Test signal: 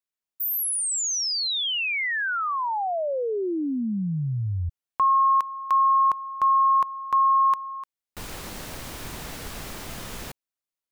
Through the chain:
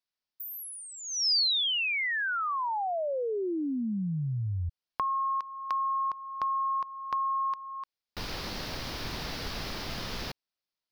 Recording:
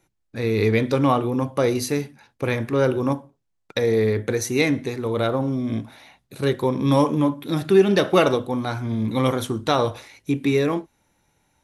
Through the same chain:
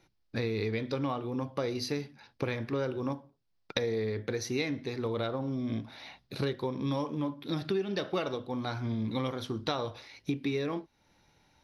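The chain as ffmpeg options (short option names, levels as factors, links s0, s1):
-af "acompressor=threshold=0.0355:ratio=6:attack=19:release=497:knee=1:detection=rms,highshelf=f=6200:t=q:w=3:g=-8"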